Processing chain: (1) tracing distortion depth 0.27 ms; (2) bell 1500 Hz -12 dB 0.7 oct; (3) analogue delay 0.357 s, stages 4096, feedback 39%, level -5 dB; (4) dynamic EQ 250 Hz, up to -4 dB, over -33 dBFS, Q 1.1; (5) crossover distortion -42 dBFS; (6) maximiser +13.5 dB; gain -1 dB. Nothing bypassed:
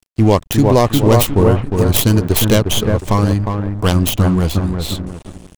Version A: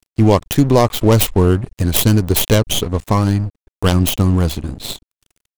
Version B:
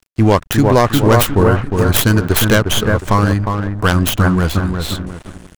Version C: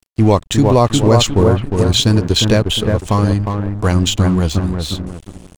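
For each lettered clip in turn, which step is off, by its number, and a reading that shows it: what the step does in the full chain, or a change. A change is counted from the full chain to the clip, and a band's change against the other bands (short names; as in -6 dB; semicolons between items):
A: 3, momentary loudness spread change +4 LU; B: 2, 2 kHz band +8.0 dB; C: 1, 4 kHz band +4.5 dB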